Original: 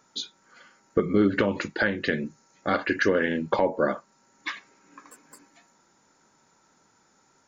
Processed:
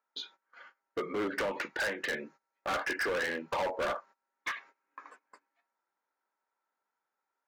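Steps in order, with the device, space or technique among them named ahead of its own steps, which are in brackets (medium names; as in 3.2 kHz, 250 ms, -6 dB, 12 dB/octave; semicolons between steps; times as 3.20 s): walkie-talkie (band-pass 600–2400 Hz; hard clipper -30.5 dBFS, distortion -5 dB; gate -55 dBFS, range -21 dB); trim +1.5 dB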